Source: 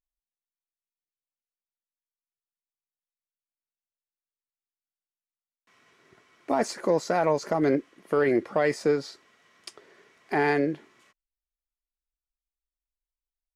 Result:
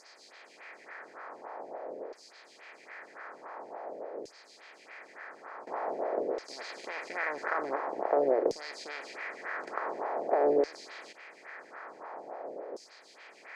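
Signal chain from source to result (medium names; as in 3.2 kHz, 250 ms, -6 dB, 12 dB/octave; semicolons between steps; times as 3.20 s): spectral levelling over time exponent 0.2; LFO band-pass saw down 0.47 Hz 440–5300 Hz; lamp-driven phase shifter 3.5 Hz; trim -3 dB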